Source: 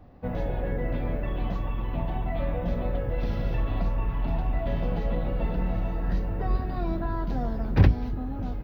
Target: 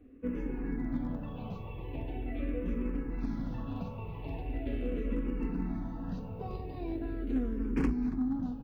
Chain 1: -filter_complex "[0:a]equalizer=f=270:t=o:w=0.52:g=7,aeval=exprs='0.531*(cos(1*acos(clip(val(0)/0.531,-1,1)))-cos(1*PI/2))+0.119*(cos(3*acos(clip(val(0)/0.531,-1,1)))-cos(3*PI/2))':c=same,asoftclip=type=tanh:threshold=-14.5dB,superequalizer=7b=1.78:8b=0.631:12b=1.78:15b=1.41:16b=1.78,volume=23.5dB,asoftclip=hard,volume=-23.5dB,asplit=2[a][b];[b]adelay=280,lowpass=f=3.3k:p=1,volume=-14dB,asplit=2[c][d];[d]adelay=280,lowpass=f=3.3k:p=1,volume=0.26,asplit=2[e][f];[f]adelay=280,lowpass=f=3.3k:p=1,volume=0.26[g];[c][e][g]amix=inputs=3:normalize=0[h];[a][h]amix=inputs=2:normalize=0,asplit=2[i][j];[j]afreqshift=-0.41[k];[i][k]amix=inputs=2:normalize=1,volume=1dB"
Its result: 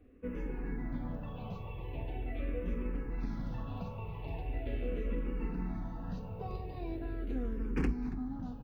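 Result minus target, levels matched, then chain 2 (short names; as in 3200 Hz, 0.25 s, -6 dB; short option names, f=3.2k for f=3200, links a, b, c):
250 Hz band -3.0 dB
-filter_complex "[0:a]equalizer=f=270:t=o:w=0.52:g=16,aeval=exprs='0.531*(cos(1*acos(clip(val(0)/0.531,-1,1)))-cos(1*PI/2))+0.119*(cos(3*acos(clip(val(0)/0.531,-1,1)))-cos(3*PI/2))':c=same,asoftclip=type=tanh:threshold=-14.5dB,superequalizer=7b=1.78:8b=0.631:12b=1.78:15b=1.41:16b=1.78,volume=23.5dB,asoftclip=hard,volume=-23.5dB,asplit=2[a][b];[b]adelay=280,lowpass=f=3.3k:p=1,volume=-14dB,asplit=2[c][d];[d]adelay=280,lowpass=f=3.3k:p=1,volume=0.26,asplit=2[e][f];[f]adelay=280,lowpass=f=3.3k:p=1,volume=0.26[g];[c][e][g]amix=inputs=3:normalize=0[h];[a][h]amix=inputs=2:normalize=0,asplit=2[i][j];[j]afreqshift=-0.41[k];[i][k]amix=inputs=2:normalize=1,volume=1dB"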